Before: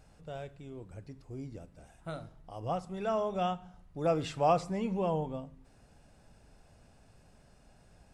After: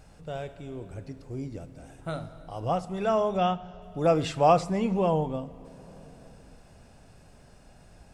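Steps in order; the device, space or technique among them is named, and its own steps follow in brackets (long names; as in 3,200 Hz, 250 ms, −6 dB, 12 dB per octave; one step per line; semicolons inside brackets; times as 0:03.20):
compressed reverb return (on a send at −11 dB: convolution reverb RT60 2.7 s, pre-delay 64 ms + downward compressor, threshold −40 dBFS, peak gain reduction 14.5 dB)
0:03.37–0:03.82: on the sum: low-pass filter 5,900 Hz 24 dB per octave
level +6.5 dB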